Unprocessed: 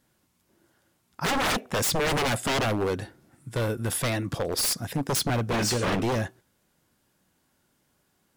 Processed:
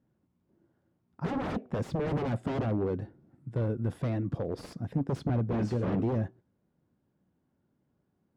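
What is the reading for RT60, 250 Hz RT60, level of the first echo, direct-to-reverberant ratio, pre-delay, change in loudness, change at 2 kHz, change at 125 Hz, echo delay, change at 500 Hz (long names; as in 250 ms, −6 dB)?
no reverb audible, no reverb audible, no echo audible, no reverb audible, no reverb audible, −5.5 dB, −16.0 dB, −0.5 dB, no echo audible, −5.0 dB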